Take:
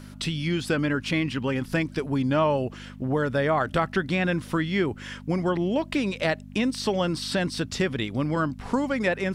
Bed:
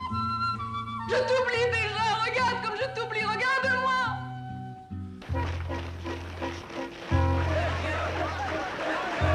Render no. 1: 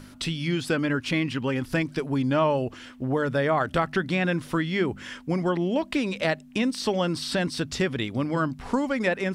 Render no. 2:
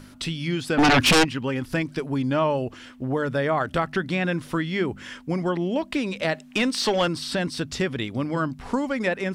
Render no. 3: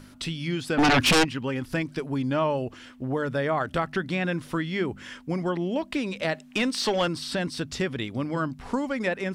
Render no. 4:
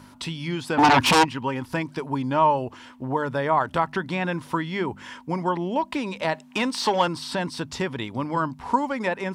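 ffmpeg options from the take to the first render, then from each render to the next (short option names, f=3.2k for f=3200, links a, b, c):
-af "bandreject=f=50:t=h:w=4,bandreject=f=100:t=h:w=4,bandreject=f=150:t=h:w=4,bandreject=f=200:t=h:w=4"
-filter_complex "[0:a]asplit=3[a][b][c];[a]afade=t=out:st=0.77:d=0.02[d];[b]aeval=exprs='0.224*sin(PI/2*4.47*val(0)/0.224)':c=same,afade=t=in:st=0.77:d=0.02,afade=t=out:st=1.23:d=0.02[e];[c]afade=t=in:st=1.23:d=0.02[f];[d][e][f]amix=inputs=3:normalize=0,asettb=1/sr,asplit=3[g][h][i];[g]atrim=end=6.344[j];[h]atrim=start=6.34:end=7.08,asetpts=PTS-STARTPTS,afade=t=in:d=0.004:c=qsin,afade=t=out:st=0.736:d=0.004:c=qsin,asplit=2[k][l];[l]highpass=f=720:p=1,volume=15dB,asoftclip=type=tanh:threshold=-12dB[m];[k][m]amix=inputs=2:normalize=0,lowpass=f=6k:p=1,volume=-6dB[n];[i]atrim=start=7.076[o];[j][n]acrossfade=d=0.004:c1=hsin:c2=qsin[p];[p][o]acrossfade=d=0.004:c1=qsin:c2=hsin"
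-af "volume=-2.5dB"
-af "highpass=57,equalizer=f=940:w=3.7:g=14.5"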